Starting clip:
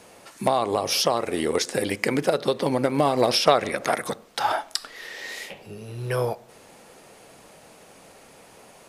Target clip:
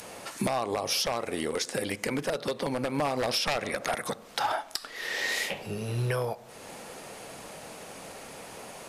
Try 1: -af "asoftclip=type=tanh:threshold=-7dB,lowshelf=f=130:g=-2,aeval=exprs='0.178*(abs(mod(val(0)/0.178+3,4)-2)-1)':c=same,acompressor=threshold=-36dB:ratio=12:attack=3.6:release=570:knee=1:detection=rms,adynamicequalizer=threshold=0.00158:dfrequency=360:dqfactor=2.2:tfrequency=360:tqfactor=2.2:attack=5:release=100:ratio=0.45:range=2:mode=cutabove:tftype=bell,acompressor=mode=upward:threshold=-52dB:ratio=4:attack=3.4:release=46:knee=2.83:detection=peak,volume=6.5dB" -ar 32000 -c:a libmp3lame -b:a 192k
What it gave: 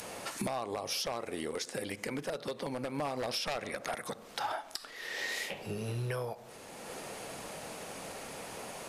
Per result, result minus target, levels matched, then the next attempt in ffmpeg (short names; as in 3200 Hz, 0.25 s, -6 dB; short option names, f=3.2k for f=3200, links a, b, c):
soft clip: distortion +11 dB; compressor: peak gain reduction +7 dB
-af "asoftclip=type=tanh:threshold=-0.5dB,lowshelf=f=130:g=-2,aeval=exprs='0.178*(abs(mod(val(0)/0.178+3,4)-2)-1)':c=same,acompressor=threshold=-36dB:ratio=12:attack=3.6:release=570:knee=1:detection=rms,adynamicequalizer=threshold=0.00158:dfrequency=360:dqfactor=2.2:tfrequency=360:tqfactor=2.2:attack=5:release=100:ratio=0.45:range=2:mode=cutabove:tftype=bell,acompressor=mode=upward:threshold=-52dB:ratio=4:attack=3.4:release=46:knee=2.83:detection=peak,volume=6.5dB" -ar 32000 -c:a libmp3lame -b:a 192k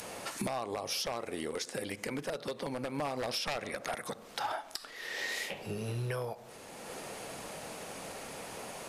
compressor: peak gain reduction +7 dB
-af "asoftclip=type=tanh:threshold=-0.5dB,lowshelf=f=130:g=-2,aeval=exprs='0.178*(abs(mod(val(0)/0.178+3,4)-2)-1)':c=same,acompressor=threshold=-28.5dB:ratio=12:attack=3.6:release=570:knee=1:detection=rms,adynamicequalizer=threshold=0.00158:dfrequency=360:dqfactor=2.2:tfrequency=360:tqfactor=2.2:attack=5:release=100:ratio=0.45:range=2:mode=cutabove:tftype=bell,acompressor=mode=upward:threshold=-52dB:ratio=4:attack=3.4:release=46:knee=2.83:detection=peak,volume=6.5dB" -ar 32000 -c:a libmp3lame -b:a 192k